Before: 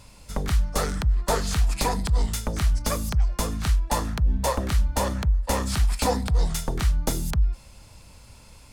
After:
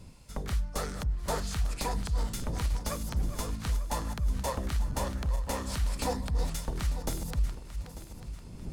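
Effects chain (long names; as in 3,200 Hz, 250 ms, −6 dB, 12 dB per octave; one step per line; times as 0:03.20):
feedback delay that plays each chunk backwards 447 ms, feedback 62%, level −11 dB
wind on the microphone 140 Hz −37 dBFS
level −8.5 dB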